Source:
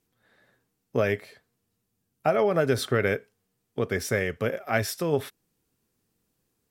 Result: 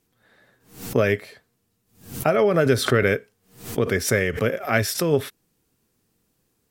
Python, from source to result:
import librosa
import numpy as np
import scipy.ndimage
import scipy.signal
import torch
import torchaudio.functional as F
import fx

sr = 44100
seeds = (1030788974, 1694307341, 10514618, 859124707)

y = fx.dynamic_eq(x, sr, hz=800.0, q=2.3, threshold_db=-40.0, ratio=4.0, max_db=-6)
y = fx.pre_swell(y, sr, db_per_s=130.0)
y = y * librosa.db_to_amplitude(5.5)